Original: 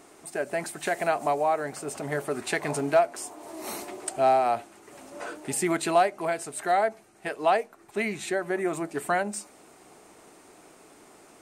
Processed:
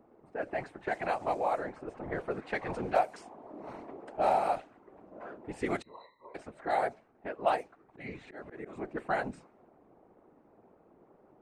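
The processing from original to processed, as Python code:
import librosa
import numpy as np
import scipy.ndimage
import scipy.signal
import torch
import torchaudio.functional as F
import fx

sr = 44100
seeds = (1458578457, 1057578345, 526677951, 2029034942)

y = fx.env_lowpass(x, sr, base_hz=740.0, full_db=-18.5)
y = fx.octave_resonator(y, sr, note='B', decay_s=0.41, at=(5.82, 6.35))
y = fx.whisperise(y, sr, seeds[0])
y = fx.auto_swell(y, sr, attack_ms=224.0, at=(7.54, 8.89), fade=0.02)
y = y * librosa.db_to_amplitude(-6.0)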